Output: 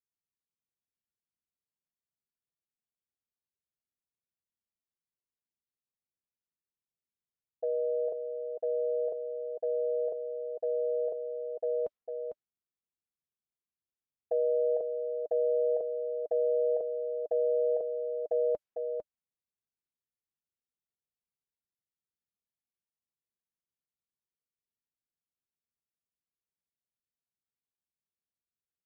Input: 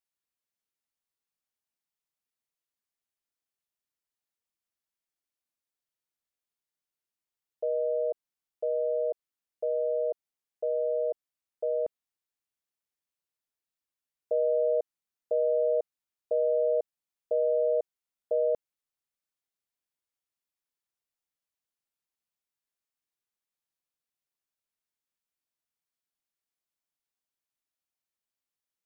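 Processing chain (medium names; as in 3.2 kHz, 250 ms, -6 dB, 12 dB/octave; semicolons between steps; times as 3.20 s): level-controlled noise filter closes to 350 Hz, open at -25 dBFS; comb of notches 300 Hz; delay 451 ms -6.5 dB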